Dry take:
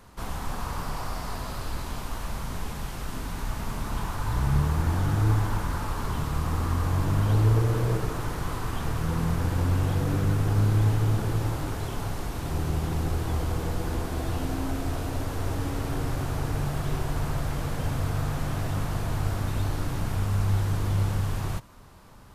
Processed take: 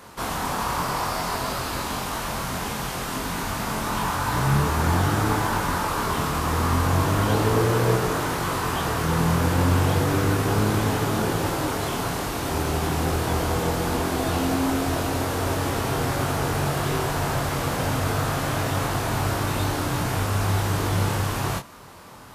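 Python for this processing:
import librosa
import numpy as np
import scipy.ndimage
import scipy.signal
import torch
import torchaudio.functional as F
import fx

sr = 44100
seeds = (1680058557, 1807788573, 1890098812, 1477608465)

y = fx.highpass(x, sr, hz=260.0, slope=6)
y = fx.doubler(y, sr, ms=23.0, db=-4.5)
y = y * librosa.db_to_amplitude(9.0)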